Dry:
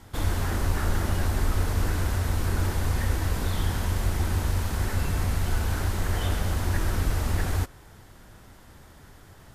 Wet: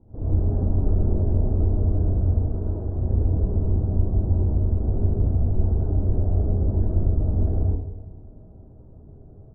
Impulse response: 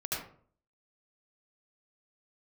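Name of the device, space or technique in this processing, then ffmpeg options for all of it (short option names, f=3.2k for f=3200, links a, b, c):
next room: -filter_complex "[0:a]asettb=1/sr,asplit=3[a][b][c];[a]atrim=end=2.394[d];[b]atrim=start=2.39:end=2.94,asetpts=PTS-STARTPTS,afade=t=in:d=0.004:c=qsin,afade=t=out:st=0.546:d=0.004:c=qsin,lowshelf=f=400:g=-6.5[e];[c]atrim=start=2.936[f];[d][e]acrossfade=d=0.004:c1=hsin:c2=qsin[g];[g][f]acrossfade=d=0.004:c1=qsin:c2=hsin,lowpass=f=580:w=0.5412,lowpass=f=580:w=1.3066,asplit=2[h][i];[i]adelay=188,lowpass=f=2k:p=1,volume=-14dB,asplit=2[j][k];[k]adelay=188,lowpass=f=2k:p=1,volume=0.46,asplit=2[l][m];[m]adelay=188,lowpass=f=2k:p=1,volume=0.46,asplit=2[n][o];[o]adelay=188,lowpass=f=2k:p=1,volume=0.46[p];[h][j][l][n][p]amix=inputs=5:normalize=0[q];[1:a]atrim=start_sample=2205[r];[q][r]afir=irnorm=-1:irlink=0"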